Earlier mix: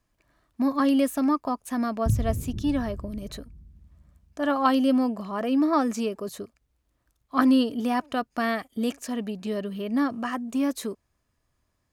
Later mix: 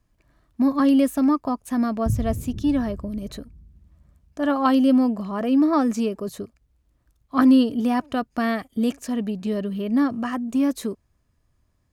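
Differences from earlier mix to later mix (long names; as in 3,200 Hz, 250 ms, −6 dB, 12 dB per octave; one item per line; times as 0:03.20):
speech: add low-shelf EQ 280 Hz +9 dB
background: add Butterworth low-pass 1,000 Hz 96 dB per octave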